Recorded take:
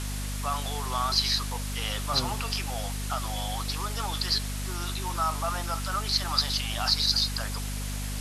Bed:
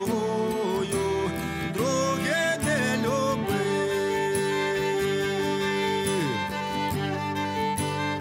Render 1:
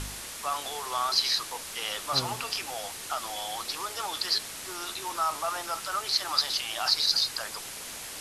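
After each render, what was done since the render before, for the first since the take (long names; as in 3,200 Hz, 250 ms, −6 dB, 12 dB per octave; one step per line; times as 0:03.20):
hum removal 50 Hz, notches 5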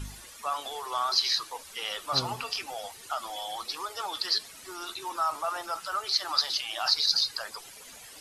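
broadband denoise 13 dB, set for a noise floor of −40 dBFS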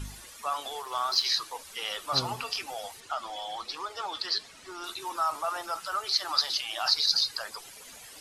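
0:00.82–0:01.26: mu-law and A-law mismatch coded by A
0:03.00–0:04.84: high-frequency loss of the air 66 metres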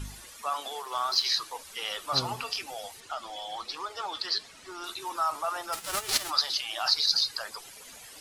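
0:00.42–0:00.95: high-pass filter 150 Hz 24 dB per octave
0:02.52–0:03.52: dynamic equaliser 1,100 Hz, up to −4 dB, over −46 dBFS, Q 1.2
0:05.72–0:06.29: spectral envelope flattened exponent 0.3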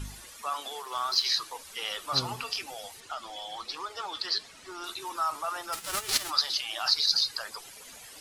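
dynamic equaliser 680 Hz, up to −4 dB, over −42 dBFS, Q 1.4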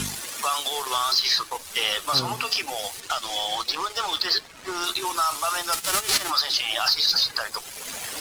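leveller curve on the samples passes 2
multiband upward and downward compressor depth 70%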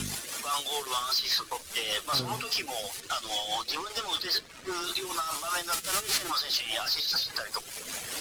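soft clipping −22 dBFS, distortion −10 dB
rotating-speaker cabinet horn 5 Hz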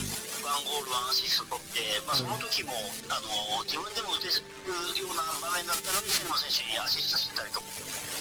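mix in bed −22.5 dB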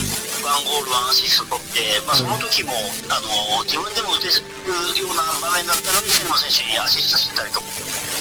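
level +11.5 dB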